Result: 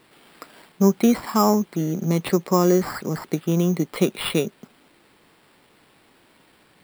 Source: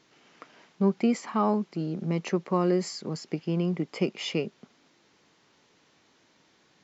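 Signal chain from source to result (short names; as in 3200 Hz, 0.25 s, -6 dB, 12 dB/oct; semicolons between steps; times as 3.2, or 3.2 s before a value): sample-rate reducer 6300 Hz, jitter 0%; gain +7 dB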